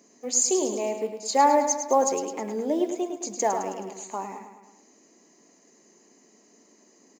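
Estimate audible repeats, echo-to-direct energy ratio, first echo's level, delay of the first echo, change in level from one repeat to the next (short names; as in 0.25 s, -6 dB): 5, -7.0 dB, -8.5 dB, 0.106 s, -5.0 dB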